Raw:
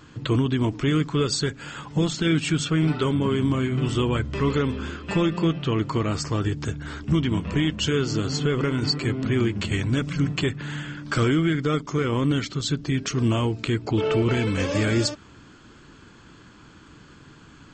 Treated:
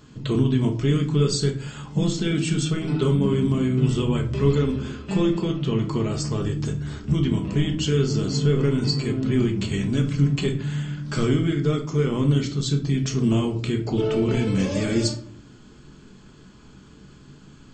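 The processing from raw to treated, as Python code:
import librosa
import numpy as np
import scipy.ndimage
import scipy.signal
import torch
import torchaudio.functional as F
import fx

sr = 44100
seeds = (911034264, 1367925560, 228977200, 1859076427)

y = fx.peak_eq(x, sr, hz=1500.0, db=-8.0, octaves=2.2)
y = fx.room_shoebox(y, sr, seeds[0], volume_m3=390.0, walls='furnished', distance_m=1.4)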